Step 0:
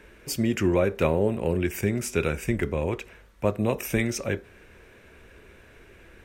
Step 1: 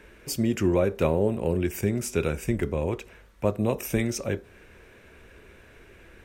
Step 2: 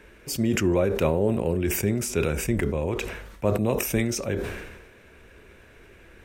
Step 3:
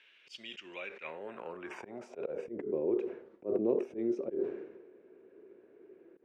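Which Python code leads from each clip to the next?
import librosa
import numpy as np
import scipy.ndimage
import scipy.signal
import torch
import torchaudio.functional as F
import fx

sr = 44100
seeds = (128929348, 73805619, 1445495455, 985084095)

y1 = fx.dynamic_eq(x, sr, hz=2000.0, q=1.0, threshold_db=-45.0, ratio=4.0, max_db=-5)
y2 = fx.sustainer(y1, sr, db_per_s=46.0)
y3 = fx.bandpass_edges(y2, sr, low_hz=170.0, high_hz=6100.0)
y3 = fx.filter_sweep_bandpass(y3, sr, from_hz=3100.0, to_hz=370.0, start_s=0.69, end_s=2.67, q=3.8)
y3 = fx.auto_swell(y3, sr, attack_ms=116.0)
y3 = y3 * 10.0 ** (2.5 / 20.0)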